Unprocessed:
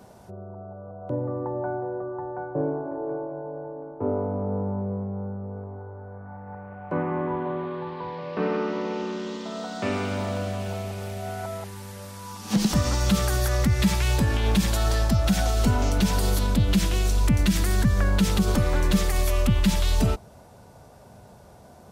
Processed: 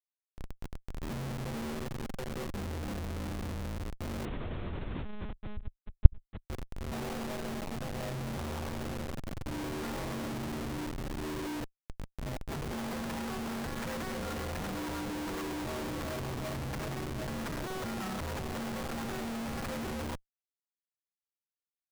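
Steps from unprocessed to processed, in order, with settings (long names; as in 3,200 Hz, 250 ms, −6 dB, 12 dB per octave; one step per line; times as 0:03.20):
single-sideband voice off tune −360 Hz 440–2,400 Hz
comparator with hysteresis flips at −37 dBFS
0:04.25–0:06.45: one-pitch LPC vocoder at 8 kHz 210 Hz
level −2 dB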